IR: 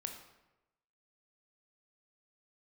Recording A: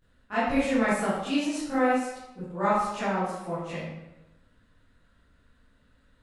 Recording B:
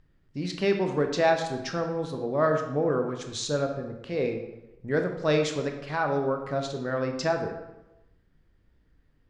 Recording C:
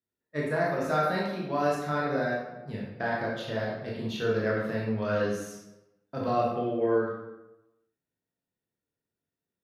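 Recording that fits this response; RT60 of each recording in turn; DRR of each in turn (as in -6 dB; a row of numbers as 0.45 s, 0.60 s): B; 1.0 s, 1.0 s, 1.0 s; -14.5 dB, 4.0 dB, -5.0 dB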